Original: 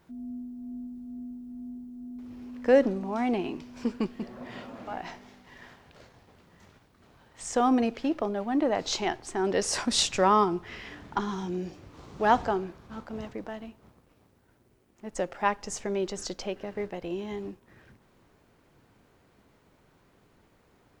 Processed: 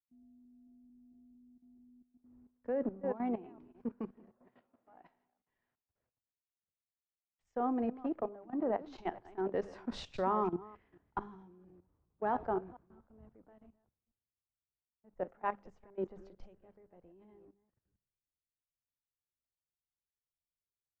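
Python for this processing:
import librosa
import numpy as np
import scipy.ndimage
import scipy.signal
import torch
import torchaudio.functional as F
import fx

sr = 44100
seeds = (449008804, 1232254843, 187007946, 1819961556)

y = fx.reverse_delay(x, sr, ms=224, wet_db=-10.5)
y = scipy.signal.sosfilt(scipy.signal.butter(2, 1300.0, 'lowpass', fs=sr, output='sos'), y)
y = fx.hum_notches(y, sr, base_hz=50, count=4)
y = fx.level_steps(y, sr, step_db=14)
y = fx.low_shelf(y, sr, hz=170.0, db=-7.0, at=(3.9, 7.55))
y = fx.band_widen(y, sr, depth_pct=100)
y = y * librosa.db_to_amplitude(-8.5)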